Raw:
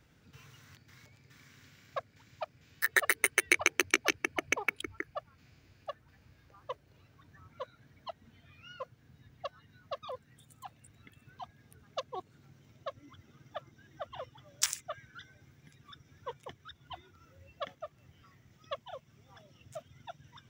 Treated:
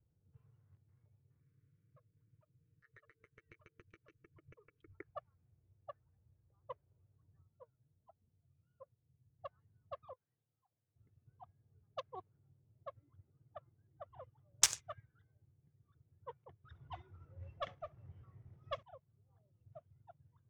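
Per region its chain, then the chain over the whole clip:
0:01.40–0:04.95: comb filter 6.5 ms, depth 54% + downward compressor, threshold −39 dBFS + Butterworth band-reject 790 Hz, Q 1.1
0:07.42–0:09.39: high-shelf EQ 2,600 Hz −10 dB + flanger 1.4 Hz, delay 3.4 ms, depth 4.7 ms, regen +63%
0:10.13–0:10.96: high-pass filter 810 Hz 6 dB per octave + downward compressor 10 to 1, threshold −54 dBFS
0:14.50–0:15.03: low-shelf EQ 130 Hz +7.5 dB + sample-rate reduction 14,000 Hz
0:16.64–0:18.83: high-shelf EQ 8,900 Hz +8.5 dB + power curve on the samples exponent 0.7 + flutter between parallel walls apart 11.6 metres, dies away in 0.21 s
whole clip: graphic EQ with 15 bands 100 Hz +7 dB, 250 Hz −11 dB, 630 Hz −3 dB, 1,600 Hz −3 dB, 6,300 Hz +4 dB; low-pass that shuts in the quiet parts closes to 460 Hz, open at −29 dBFS; expander for the loud parts 1.5 to 1, over −56 dBFS; level +2.5 dB

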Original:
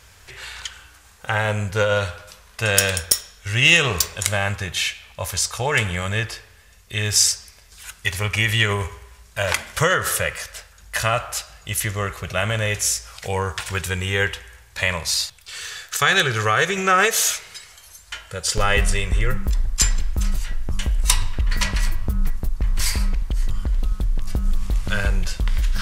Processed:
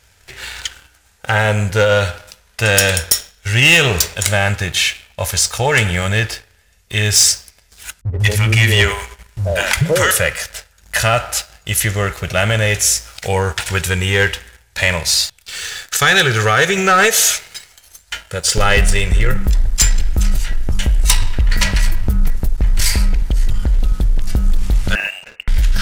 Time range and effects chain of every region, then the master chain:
0:08.01–0:10.11: low-shelf EQ 430 Hz +4 dB + three-band delay without the direct sound lows, mids, highs 80/190 ms, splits 200/710 Hz
0:24.95–0:25.48: Butterworth high-pass 340 Hz + tilt shelving filter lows +7.5 dB, about 810 Hz + voice inversion scrambler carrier 3,200 Hz
whole clip: notch filter 1,100 Hz, Q 5; leveller curve on the samples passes 2

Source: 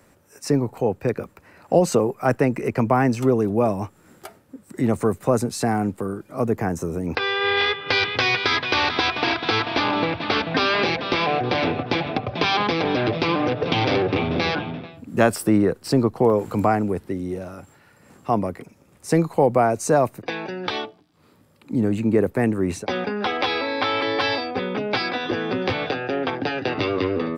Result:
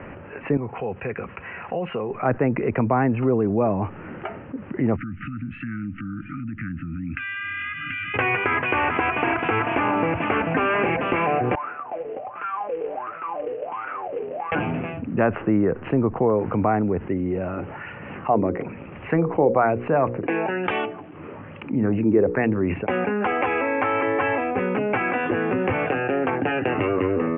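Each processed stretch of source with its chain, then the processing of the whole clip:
0:00.57–0:02.11: tilt shelving filter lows −6 dB, about 1,200 Hz + downward compressor 1.5 to 1, threshold −43 dBFS + notch comb filter 300 Hz
0:04.96–0:08.14: downward compressor 5 to 1, threshold −35 dBFS + linear-phase brick-wall band-stop 320–1,200 Hz
0:11.55–0:14.52: LFO wah 1.4 Hz 440–1,400 Hz, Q 18 + floating-point word with a short mantissa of 2 bits
0:17.56–0:22.74: mains-hum notches 60/120/180/240/300/360/420/480/540 Hz + auto-filter bell 1.1 Hz 320–4,400 Hz +9 dB
whole clip: Butterworth low-pass 2,900 Hz 96 dB per octave; treble cut that deepens with the level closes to 2,300 Hz, closed at −19.5 dBFS; envelope flattener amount 50%; level −6 dB

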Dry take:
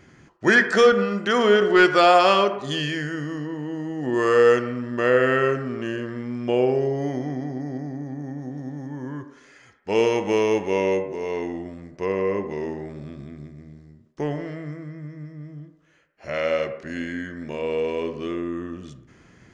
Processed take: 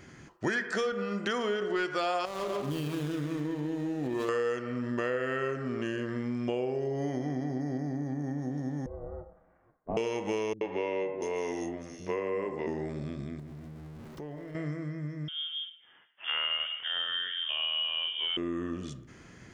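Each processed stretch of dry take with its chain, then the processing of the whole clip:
0:02.25–0:04.29: running median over 25 samples + single-tap delay 130 ms −9 dB + downward compressor 10 to 1, threshold −23 dBFS
0:08.86–0:09.97: ring modulation 230 Hz + transistor ladder low-pass 1,100 Hz, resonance 25%
0:10.53–0:12.67: parametric band 88 Hz −5.5 dB 2.2 octaves + three-band delay without the direct sound lows, mids, highs 80/690 ms, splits 210/4,300 Hz
0:13.39–0:14.55: converter with a step at zero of −41 dBFS + high-shelf EQ 3,100 Hz −11 dB + downward compressor 3 to 1, threshold −43 dBFS
0:15.28–0:18.37: voice inversion scrambler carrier 3,400 Hz + low-shelf EQ 130 Hz −8.5 dB
whole clip: high-shelf EQ 5,000 Hz +5 dB; downward compressor 6 to 1, threshold −29 dBFS

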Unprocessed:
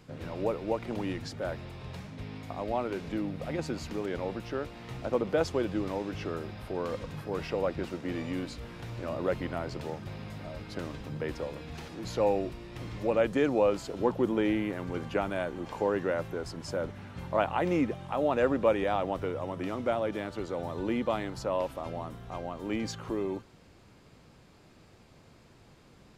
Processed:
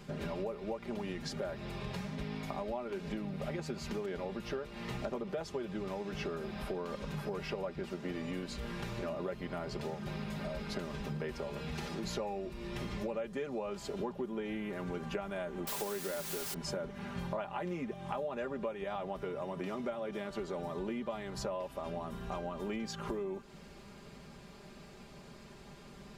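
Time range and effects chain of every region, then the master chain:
0:15.67–0:16.54: high-pass filter 120 Hz + bit-depth reduction 6 bits, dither triangular
whole clip: comb filter 5 ms, depth 76%; downward compressor 10 to 1, threshold −38 dBFS; level +3 dB

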